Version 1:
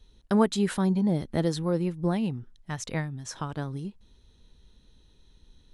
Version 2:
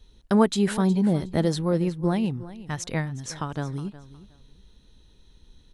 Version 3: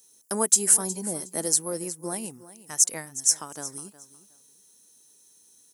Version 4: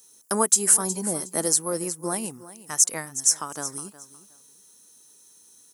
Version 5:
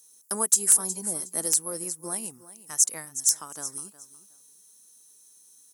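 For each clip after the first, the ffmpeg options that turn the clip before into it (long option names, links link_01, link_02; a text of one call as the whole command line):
ffmpeg -i in.wav -af "aecho=1:1:364|728:0.15|0.0314,volume=3dB" out.wav
ffmpeg -i in.wav -af "highpass=310,aexciter=amount=13.8:drive=8.7:freq=5800,volume=-6dB" out.wav
ffmpeg -i in.wav -filter_complex "[0:a]equalizer=frequency=1200:width_type=o:width=0.68:gain=5.5,asplit=2[link_01][link_02];[link_02]alimiter=limit=-11.5dB:level=0:latency=1:release=220,volume=1dB[link_03];[link_01][link_03]amix=inputs=2:normalize=0,volume=-3dB" out.wav
ffmpeg -i in.wav -af "aeval=exprs='(mod(1.58*val(0)+1,2)-1)/1.58':channel_layout=same,aemphasis=mode=production:type=cd,volume=-8.5dB" out.wav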